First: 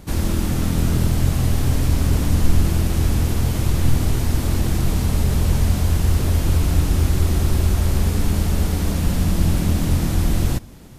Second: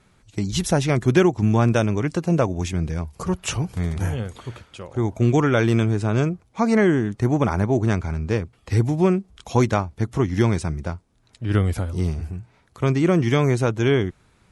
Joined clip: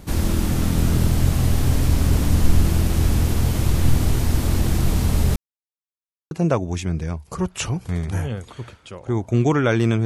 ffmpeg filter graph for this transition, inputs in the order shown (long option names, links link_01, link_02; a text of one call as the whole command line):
ffmpeg -i cue0.wav -i cue1.wav -filter_complex "[0:a]apad=whole_dur=10.05,atrim=end=10.05,asplit=2[link_01][link_02];[link_01]atrim=end=5.36,asetpts=PTS-STARTPTS,afade=type=out:start_time=5.356:duration=0.004:curve=hsin[link_03];[link_02]atrim=start=5.36:end=6.31,asetpts=PTS-STARTPTS,volume=0[link_04];[1:a]atrim=start=2.19:end=5.93,asetpts=PTS-STARTPTS,afade=type=in:duration=0.004:curve=hsin[link_05];[link_03][link_04][link_05]concat=n=3:v=0:a=1" out.wav